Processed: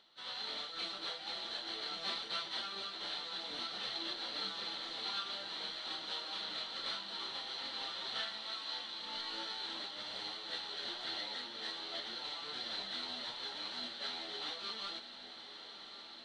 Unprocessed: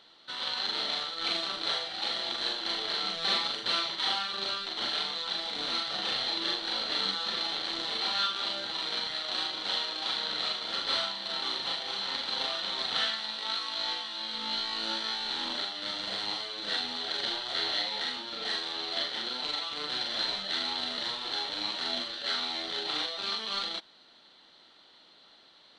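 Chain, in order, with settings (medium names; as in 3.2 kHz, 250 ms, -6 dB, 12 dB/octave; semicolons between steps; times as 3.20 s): plain phase-vocoder stretch 0.63×; echo that smears into a reverb 1128 ms, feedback 77%, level -11.5 dB; trim -6.5 dB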